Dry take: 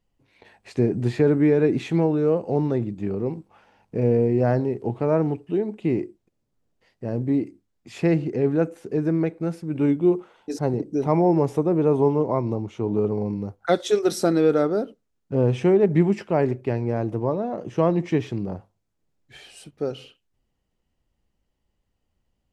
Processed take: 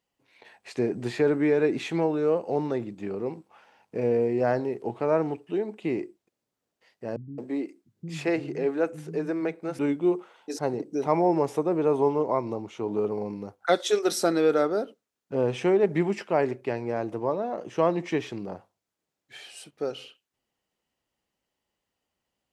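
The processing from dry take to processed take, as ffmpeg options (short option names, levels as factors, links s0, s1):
-filter_complex "[0:a]asettb=1/sr,asplit=3[s0][s1][s2];[s0]atrim=end=7.164[s3];[s1]atrim=start=7.16:end=9.79,asetpts=PTS-STARTPTS,afade=t=in:d=0.004:c=qsin,afade=t=out:st=2.626:d=0.004:c=qsin,acrossover=split=200[s4][s5];[s5]adelay=220[s6];[s4][s6]amix=inputs=2:normalize=0,atrim=end_sample=115983[s7];[s2]atrim=start=9.786[s8];[s3][s7]acrossfade=d=0.004:c1=hsin:c2=qsin[s9];[s9][s8]acrossfade=d=0.004:c1=qsin:c2=hsin,highpass=f=600:p=1,volume=1.19"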